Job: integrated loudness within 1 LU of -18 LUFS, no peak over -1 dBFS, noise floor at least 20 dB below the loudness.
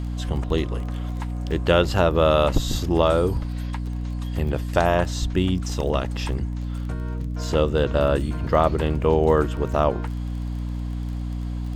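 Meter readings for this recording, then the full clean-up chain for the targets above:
tick rate 21 per s; hum 60 Hz; highest harmonic 300 Hz; hum level -25 dBFS; loudness -23.5 LUFS; peak level -3.5 dBFS; loudness target -18.0 LUFS
-> de-click; de-hum 60 Hz, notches 5; trim +5.5 dB; peak limiter -1 dBFS

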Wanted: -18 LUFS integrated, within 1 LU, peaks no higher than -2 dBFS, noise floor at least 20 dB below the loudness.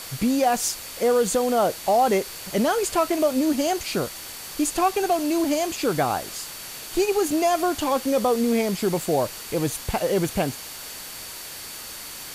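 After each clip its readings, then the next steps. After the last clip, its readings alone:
steady tone 4.5 kHz; tone level -45 dBFS; noise floor -38 dBFS; noise floor target -44 dBFS; loudness -23.5 LUFS; peak level -10.5 dBFS; loudness target -18.0 LUFS
-> band-stop 4.5 kHz, Q 30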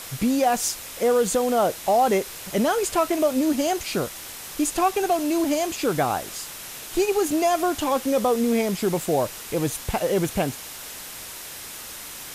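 steady tone not found; noise floor -38 dBFS; noise floor target -44 dBFS
-> noise reduction 6 dB, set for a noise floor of -38 dBFS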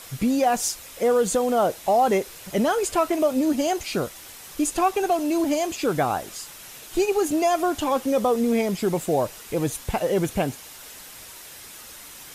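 noise floor -43 dBFS; noise floor target -44 dBFS
-> noise reduction 6 dB, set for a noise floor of -43 dBFS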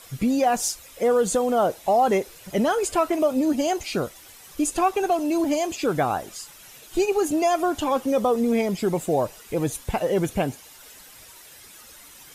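noise floor -47 dBFS; loudness -23.5 LUFS; peak level -11.0 dBFS; loudness target -18.0 LUFS
-> trim +5.5 dB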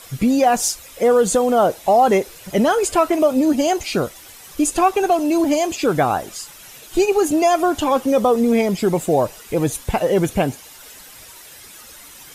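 loudness -18.0 LUFS; peak level -5.5 dBFS; noise floor -42 dBFS

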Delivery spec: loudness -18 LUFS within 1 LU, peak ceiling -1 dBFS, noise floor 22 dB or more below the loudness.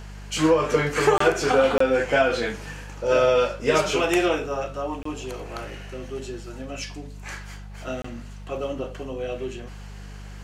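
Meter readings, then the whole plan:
dropouts 4; longest dropout 24 ms; hum 50 Hz; highest harmonic 200 Hz; hum level -36 dBFS; loudness -23.5 LUFS; peak level -7.5 dBFS; loudness target -18.0 LUFS
-> interpolate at 1.18/1.78/5.03/8.02 s, 24 ms; de-hum 50 Hz, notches 4; trim +5.5 dB

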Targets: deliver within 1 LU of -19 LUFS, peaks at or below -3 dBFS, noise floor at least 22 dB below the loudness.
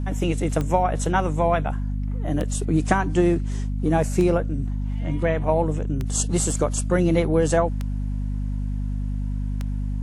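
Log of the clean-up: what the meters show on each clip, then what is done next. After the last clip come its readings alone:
clicks found 6; hum 50 Hz; highest harmonic 250 Hz; hum level -23 dBFS; loudness -23.5 LUFS; peak level -5.0 dBFS; loudness target -19.0 LUFS
-> de-click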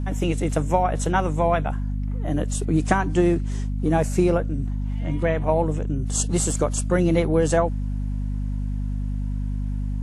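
clicks found 0; hum 50 Hz; highest harmonic 250 Hz; hum level -23 dBFS
-> de-hum 50 Hz, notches 5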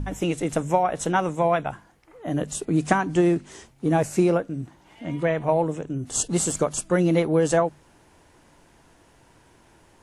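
hum not found; loudness -24.0 LUFS; peak level -5.5 dBFS; loudness target -19.0 LUFS
-> trim +5 dB; peak limiter -3 dBFS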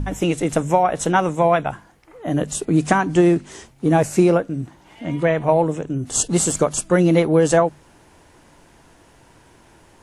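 loudness -19.0 LUFS; peak level -3.0 dBFS; noise floor -52 dBFS

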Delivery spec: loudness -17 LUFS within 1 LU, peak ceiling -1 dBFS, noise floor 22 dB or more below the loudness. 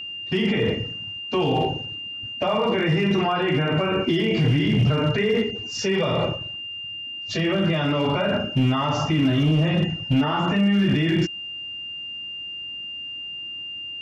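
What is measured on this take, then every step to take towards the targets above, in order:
clipped samples 1.0%; clipping level -14.0 dBFS; steady tone 2.8 kHz; tone level -31 dBFS; loudness -23.0 LUFS; peak level -14.0 dBFS; loudness target -17.0 LUFS
-> clip repair -14 dBFS; band-stop 2.8 kHz, Q 30; trim +6 dB

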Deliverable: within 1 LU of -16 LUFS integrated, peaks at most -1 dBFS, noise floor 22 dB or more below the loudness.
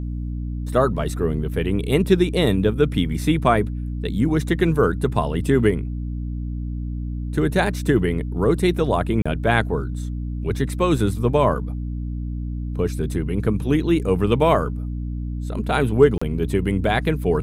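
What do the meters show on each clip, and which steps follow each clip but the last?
dropouts 2; longest dropout 35 ms; hum 60 Hz; highest harmonic 300 Hz; hum level -24 dBFS; loudness -21.5 LUFS; peak level -2.0 dBFS; loudness target -16.0 LUFS
-> interpolate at 9.22/16.18 s, 35 ms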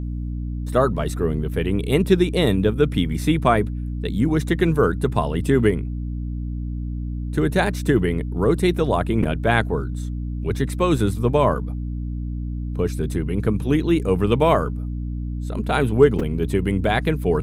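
dropouts 0; hum 60 Hz; highest harmonic 300 Hz; hum level -24 dBFS
-> hum notches 60/120/180/240/300 Hz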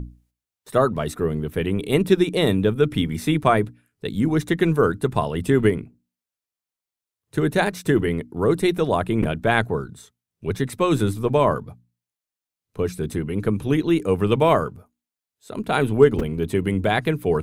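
hum not found; loudness -21.5 LUFS; peak level -2.5 dBFS; loudness target -16.0 LUFS
-> trim +5.5 dB; peak limiter -1 dBFS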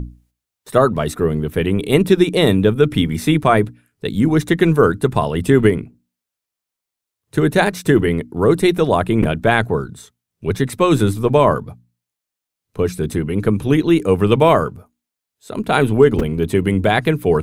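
loudness -16.5 LUFS; peak level -1.0 dBFS; noise floor -84 dBFS

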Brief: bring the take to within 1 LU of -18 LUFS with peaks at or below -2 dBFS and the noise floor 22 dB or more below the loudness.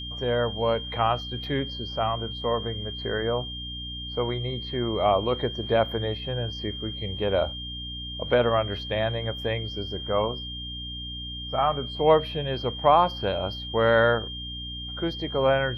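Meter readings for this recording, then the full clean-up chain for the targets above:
hum 60 Hz; highest harmonic 300 Hz; hum level -36 dBFS; steady tone 3.2 kHz; tone level -35 dBFS; loudness -26.5 LUFS; peak level -6.5 dBFS; loudness target -18.0 LUFS
-> hum notches 60/120/180/240/300 Hz; band-stop 3.2 kHz, Q 30; trim +8.5 dB; peak limiter -2 dBFS

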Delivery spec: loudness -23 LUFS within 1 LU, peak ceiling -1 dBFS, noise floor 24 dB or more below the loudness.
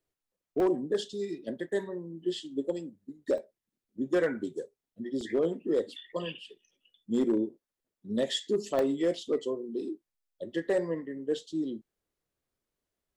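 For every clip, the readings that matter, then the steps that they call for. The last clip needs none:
clipped samples 0.5%; clipping level -20.0 dBFS; dropouts 4; longest dropout 1.3 ms; loudness -32.0 LUFS; peak level -20.0 dBFS; loudness target -23.0 LUFS
-> clip repair -20 dBFS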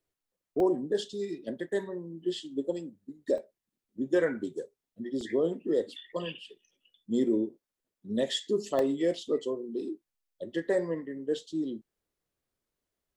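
clipped samples 0.0%; dropouts 4; longest dropout 1.3 ms
-> interpolate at 0.60/3.38/5.21/8.79 s, 1.3 ms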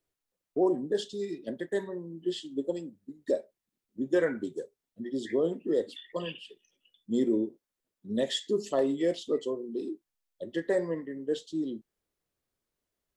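dropouts 0; loudness -32.0 LUFS; peak level -15.0 dBFS; loudness target -23.0 LUFS
-> trim +9 dB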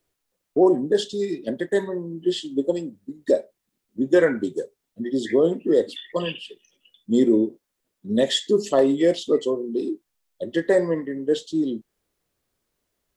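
loudness -23.0 LUFS; peak level -6.0 dBFS; noise floor -80 dBFS

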